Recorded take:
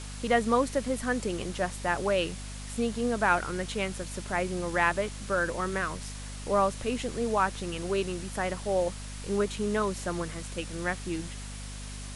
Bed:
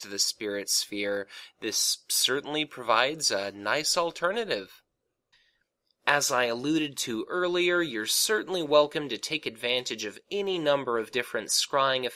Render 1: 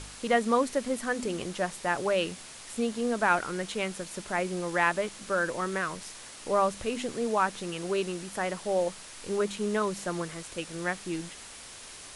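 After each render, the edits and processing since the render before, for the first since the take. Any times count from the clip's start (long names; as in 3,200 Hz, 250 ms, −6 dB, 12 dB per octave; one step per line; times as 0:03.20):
hum removal 50 Hz, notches 5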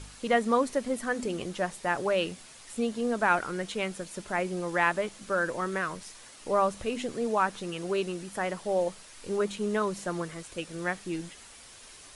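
broadband denoise 6 dB, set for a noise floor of −46 dBFS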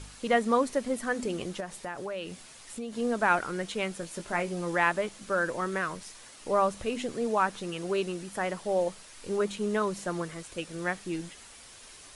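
0:01.60–0:02.93: downward compressor 3 to 1, threshold −35 dBFS
0:04.01–0:04.75: double-tracking delay 18 ms −7.5 dB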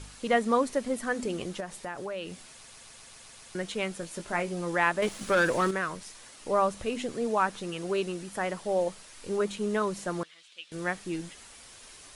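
0:02.51: stutter in place 0.13 s, 8 plays
0:05.02–0:05.71: leveller curve on the samples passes 2
0:10.23–0:10.72: resonant band-pass 3,300 Hz, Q 2.6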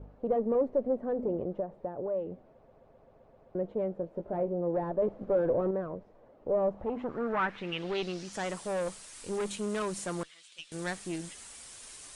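tube saturation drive 28 dB, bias 0.5
low-pass filter sweep 570 Hz → 8,900 Hz, 0:06.59–0:08.57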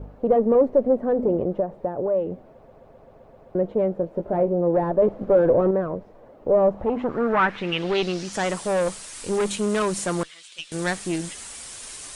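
level +10 dB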